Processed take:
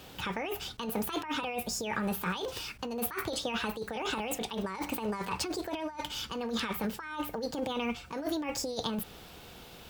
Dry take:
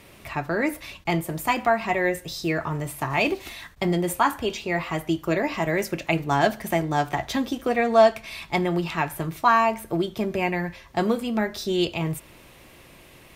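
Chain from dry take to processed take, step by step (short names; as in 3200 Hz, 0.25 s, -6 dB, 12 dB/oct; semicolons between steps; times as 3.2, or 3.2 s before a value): negative-ratio compressor -29 dBFS, ratio -1; hum 50 Hz, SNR 29 dB; speed mistake 33 rpm record played at 45 rpm; gain -5.5 dB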